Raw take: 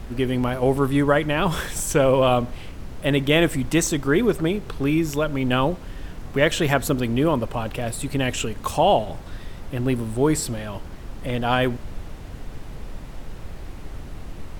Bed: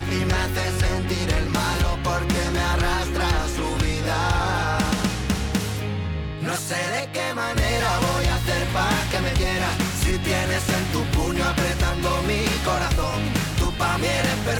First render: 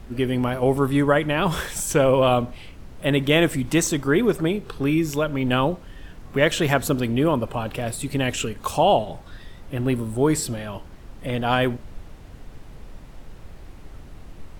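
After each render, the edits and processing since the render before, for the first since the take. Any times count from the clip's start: noise print and reduce 6 dB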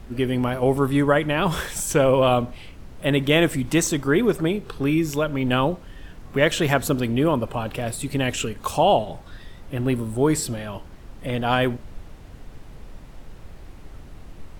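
no audible change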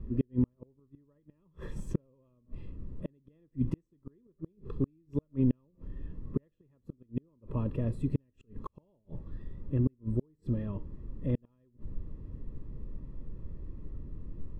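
inverted gate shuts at -14 dBFS, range -42 dB; boxcar filter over 59 samples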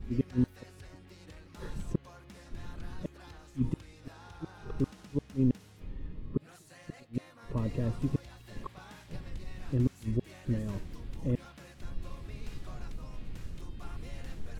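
add bed -29.5 dB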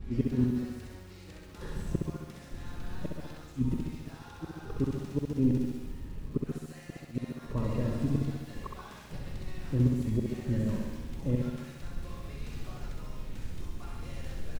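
feedback delay 65 ms, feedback 59%, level -4 dB; bit-crushed delay 143 ms, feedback 35%, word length 9-bit, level -7 dB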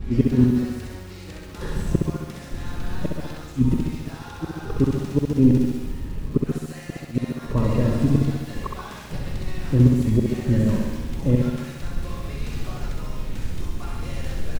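trim +10.5 dB

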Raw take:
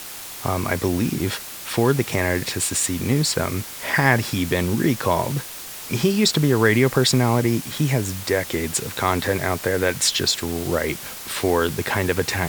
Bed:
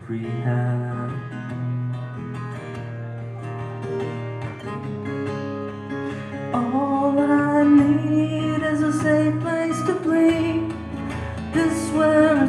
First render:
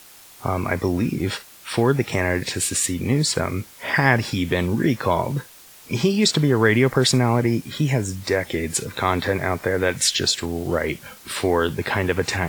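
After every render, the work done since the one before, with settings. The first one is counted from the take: noise print and reduce 11 dB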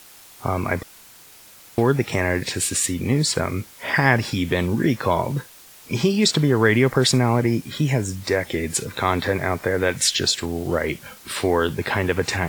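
0.83–1.78 s: room tone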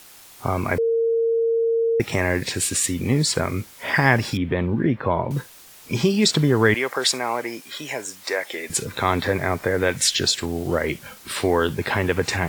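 0.78–2.00 s: bleep 458 Hz -17 dBFS; 4.37–5.31 s: distance through air 480 m; 6.74–8.70 s: high-pass 570 Hz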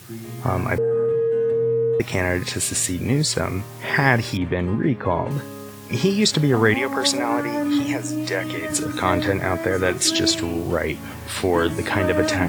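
add bed -7 dB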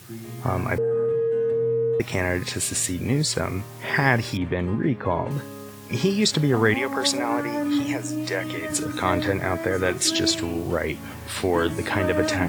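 trim -2.5 dB

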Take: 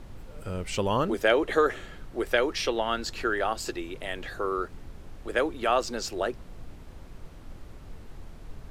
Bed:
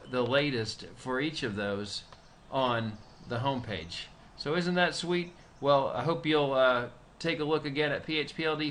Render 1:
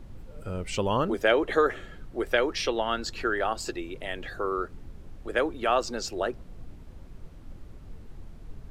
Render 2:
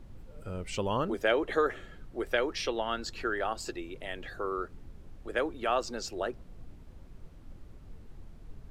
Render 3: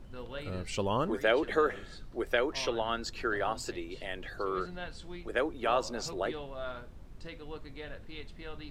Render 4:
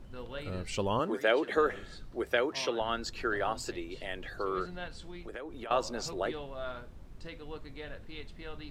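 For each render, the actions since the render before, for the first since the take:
noise reduction 6 dB, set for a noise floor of -46 dBFS
trim -4.5 dB
add bed -15.5 dB
0.99–1.57 s: high-pass 190 Hz; 2.18–2.79 s: high-pass 48 Hz -> 160 Hz 24 dB/octave; 4.87–5.71 s: compression, threshold -38 dBFS

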